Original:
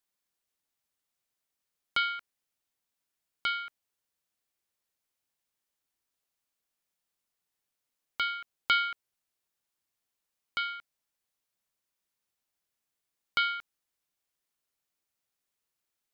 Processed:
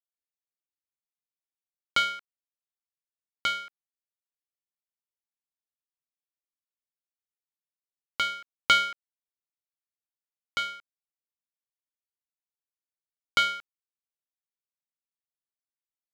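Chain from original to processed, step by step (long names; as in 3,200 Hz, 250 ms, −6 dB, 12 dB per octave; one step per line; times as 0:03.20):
power curve on the samples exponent 1.4
level +8 dB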